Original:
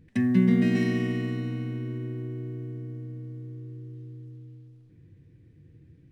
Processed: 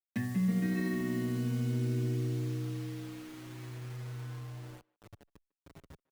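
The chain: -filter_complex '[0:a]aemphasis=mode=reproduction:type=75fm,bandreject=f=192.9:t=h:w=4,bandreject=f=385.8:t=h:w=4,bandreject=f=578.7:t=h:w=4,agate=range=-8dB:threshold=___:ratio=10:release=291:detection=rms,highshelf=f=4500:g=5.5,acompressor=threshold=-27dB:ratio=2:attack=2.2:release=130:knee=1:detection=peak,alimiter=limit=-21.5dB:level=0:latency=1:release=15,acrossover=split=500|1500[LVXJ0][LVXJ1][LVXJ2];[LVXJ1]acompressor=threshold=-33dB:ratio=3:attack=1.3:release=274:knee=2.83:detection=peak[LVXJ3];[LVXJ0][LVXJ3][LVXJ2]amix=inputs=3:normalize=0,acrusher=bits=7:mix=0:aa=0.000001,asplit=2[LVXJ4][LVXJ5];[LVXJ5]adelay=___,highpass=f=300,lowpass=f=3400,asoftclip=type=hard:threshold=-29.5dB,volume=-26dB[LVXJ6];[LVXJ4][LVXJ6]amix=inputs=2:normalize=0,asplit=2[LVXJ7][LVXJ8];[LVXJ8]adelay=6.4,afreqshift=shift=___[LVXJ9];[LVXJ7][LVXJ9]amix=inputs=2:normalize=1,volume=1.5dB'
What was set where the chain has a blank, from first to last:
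-49dB, 150, -0.41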